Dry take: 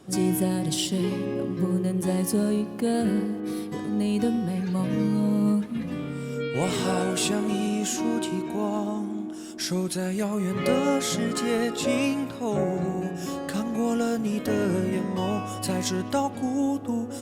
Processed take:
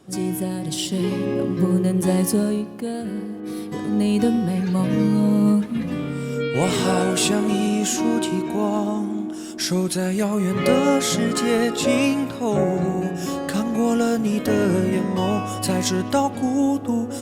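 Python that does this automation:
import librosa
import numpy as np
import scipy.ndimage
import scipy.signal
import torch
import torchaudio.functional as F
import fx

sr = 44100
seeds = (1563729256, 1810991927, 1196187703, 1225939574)

y = fx.gain(x, sr, db=fx.line((0.6, -1.0), (1.3, 6.0), (2.23, 6.0), (3.05, -5.0), (3.92, 5.5)))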